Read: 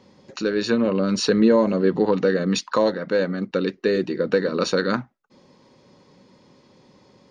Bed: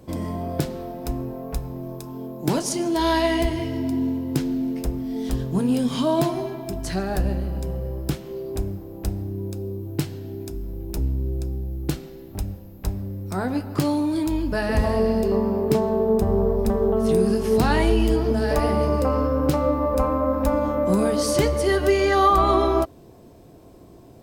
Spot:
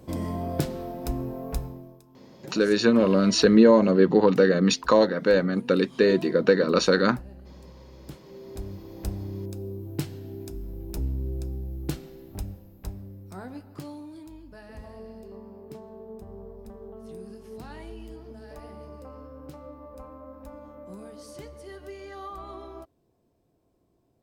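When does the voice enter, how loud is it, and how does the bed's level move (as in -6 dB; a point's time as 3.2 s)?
2.15 s, +1.0 dB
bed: 1.62 s -2 dB
2.05 s -20.5 dB
7.86 s -20.5 dB
8.93 s -5 dB
12.33 s -5 dB
14.45 s -22.5 dB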